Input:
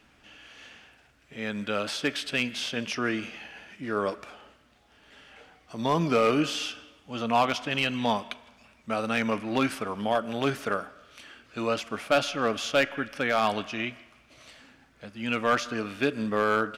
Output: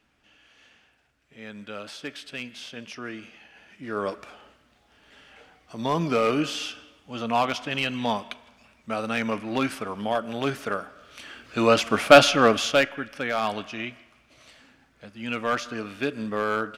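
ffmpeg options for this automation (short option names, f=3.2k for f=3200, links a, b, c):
-af "volume=11.5dB,afade=t=in:st=3.49:d=0.6:silence=0.398107,afade=t=in:st=10.85:d=1.31:silence=0.266073,afade=t=out:st=12.16:d=0.78:silence=0.223872"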